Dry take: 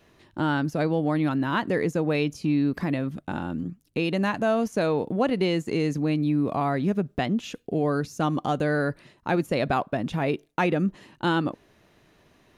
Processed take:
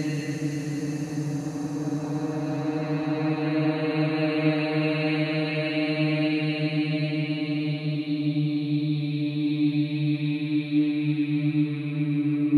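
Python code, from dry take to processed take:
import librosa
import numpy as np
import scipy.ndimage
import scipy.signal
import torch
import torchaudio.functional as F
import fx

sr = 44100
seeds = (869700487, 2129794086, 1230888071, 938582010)

y = fx.spec_box(x, sr, start_s=4.74, length_s=1.59, low_hz=490.0, high_hz=4800.0, gain_db=7)
y = fx.paulstretch(y, sr, seeds[0], factor=28.0, window_s=0.25, from_s=5.92)
y = y * librosa.db_to_amplitude(-1.5)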